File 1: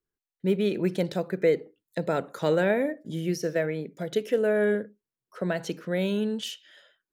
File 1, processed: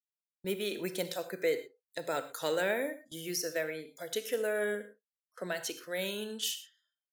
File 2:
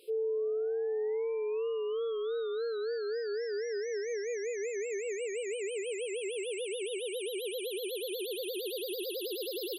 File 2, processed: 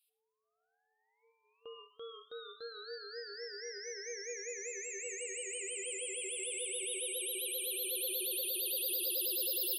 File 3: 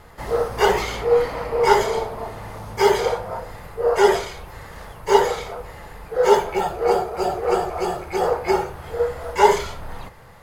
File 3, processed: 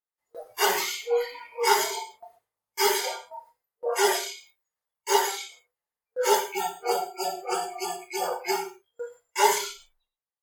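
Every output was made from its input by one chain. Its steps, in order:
RIAA equalisation recording
noise reduction from a noise print of the clip's start 28 dB
noise gate with hold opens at −35 dBFS
reverb whose tail is shaped and stops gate 140 ms flat, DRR 10 dB
level −5.5 dB

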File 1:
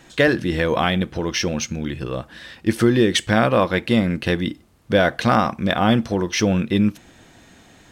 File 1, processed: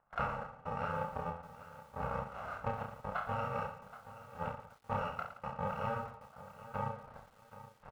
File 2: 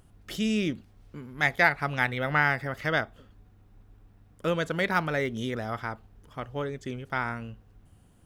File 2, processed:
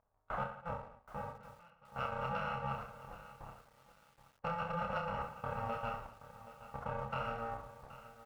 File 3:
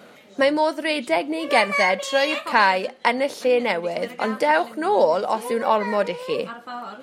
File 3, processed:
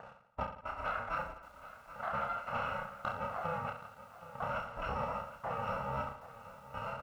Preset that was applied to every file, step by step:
samples in bit-reversed order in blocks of 128 samples
low-pass filter 1,300 Hz 24 dB per octave
noise gate with hold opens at −46 dBFS
low shelf with overshoot 470 Hz −12.5 dB, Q 1.5
harmonic and percussive parts rebalanced harmonic −7 dB
downward compressor 12 to 1, threshold −50 dBFS
leveller curve on the samples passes 1
gate pattern "xx.xxx...xx" 69 BPM −24 dB
reverse bouncing-ball delay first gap 30 ms, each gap 1.25×, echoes 5
feedback echo at a low word length 775 ms, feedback 35%, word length 11 bits, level −14.5 dB
level +12 dB

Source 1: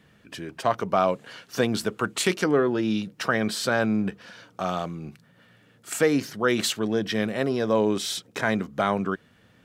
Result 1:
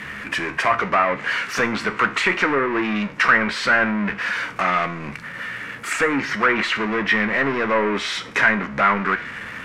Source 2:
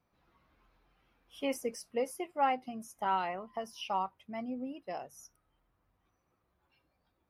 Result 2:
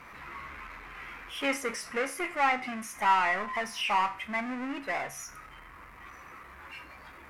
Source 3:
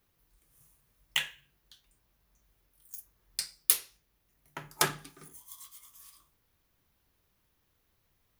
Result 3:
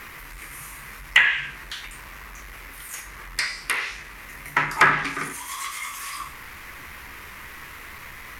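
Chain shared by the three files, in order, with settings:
power curve on the samples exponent 0.5
thirty-one-band graphic EQ 100 Hz −7 dB, 160 Hz −4 dB, 2,000 Hz +6 dB
treble cut that deepens with the level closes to 920 Hz, closed at −10 dBFS
flat-topped bell 1,600 Hz +10 dB
tuned comb filter 69 Hz, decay 0.4 s, harmonics all, mix 60%

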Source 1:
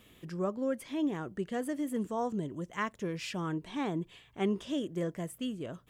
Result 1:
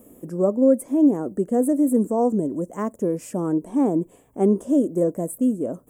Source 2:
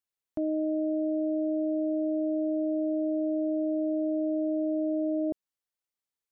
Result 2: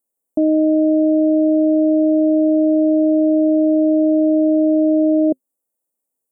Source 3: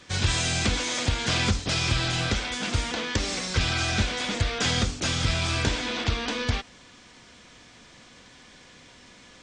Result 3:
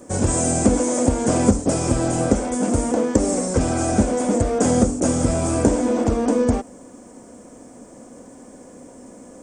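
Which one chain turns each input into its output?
drawn EQ curve 140 Hz 0 dB, 260 Hz +14 dB, 370 Hz +9 dB, 540 Hz +13 dB, 1,800 Hz −10 dB, 3,900 Hz −21 dB, 8,300 Hz +11 dB
level +3 dB

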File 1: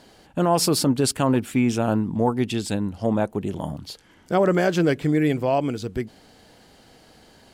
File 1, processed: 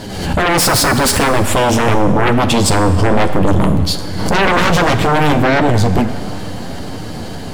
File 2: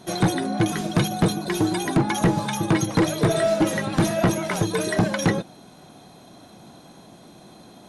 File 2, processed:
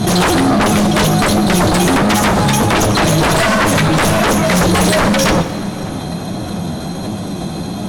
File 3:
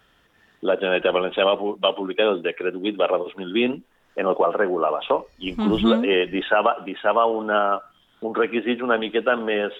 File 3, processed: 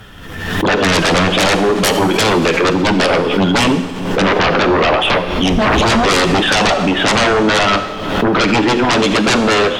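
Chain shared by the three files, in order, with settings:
bass and treble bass +10 dB, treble +1 dB
in parallel at 0 dB: downward compressor, threshold −27 dBFS
on the sum: flanger 1.4 Hz, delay 9.2 ms, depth 3.3 ms, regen +27%
sine wavefolder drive 16 dB, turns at −6 dBFS
feedback echo with a low-pass in the loop 596 ms, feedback 84%, low-pass 2,000 Hz, level −20 dB
four-comb reverb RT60 1.5 s, combs from 30 ms, DRR 10 dB
background raised ahead of every attack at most 47 dB per second
level −3.5 dB

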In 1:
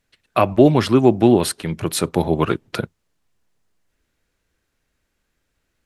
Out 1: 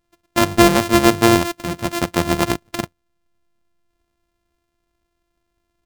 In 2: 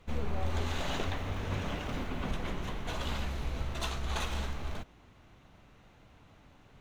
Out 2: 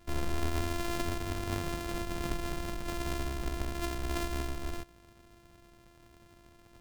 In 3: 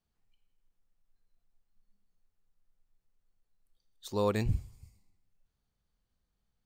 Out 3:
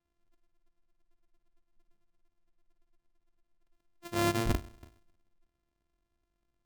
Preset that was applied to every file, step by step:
samples sorted by size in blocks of 128 samples

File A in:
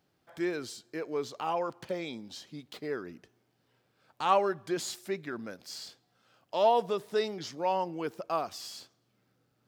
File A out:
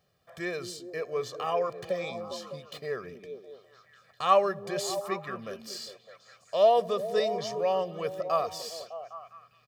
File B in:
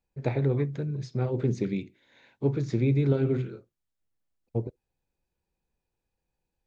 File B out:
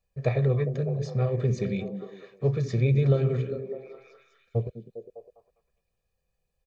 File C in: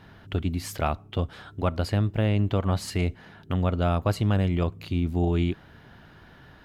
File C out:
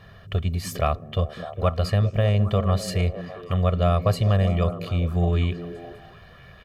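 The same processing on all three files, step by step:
comb filter 1.7 ms, depth 85%
on a send: echo through a band-pass that steps 202 ms, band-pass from 240 Hz, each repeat 0.7 octaves, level −4.5 dB

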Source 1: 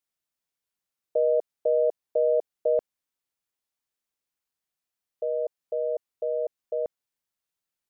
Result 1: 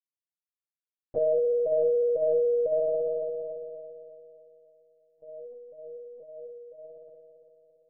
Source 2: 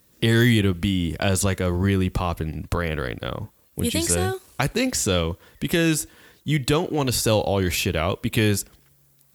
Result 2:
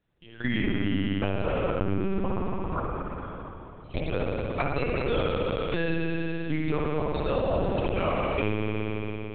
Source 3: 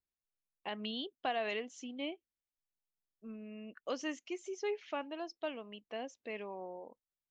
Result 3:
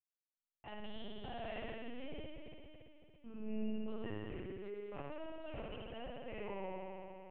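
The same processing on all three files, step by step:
noise reduction from a noise print of the clip's start 11 dB
output level in coarse steps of 24 dB
high-shelf EQ 2,200 Hz −3 dB
spring reverb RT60 3.1 s, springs 56 ms, chirp 65 ms, DRR −4.5 dB
dynamic equaliser 1,300 Hz, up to +3 dB, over −52 dBFS, Q 7.5
linear-prediction vocoder at 8 kHz pitch kept
downward compressor 3 to 1, threshold −23 dBFS

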